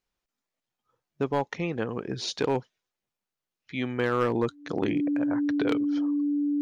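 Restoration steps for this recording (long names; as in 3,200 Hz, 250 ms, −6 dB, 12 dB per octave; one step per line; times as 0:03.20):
clipped peaks rebuilt −17 dBFS
notch filter 290 Hz, Q 30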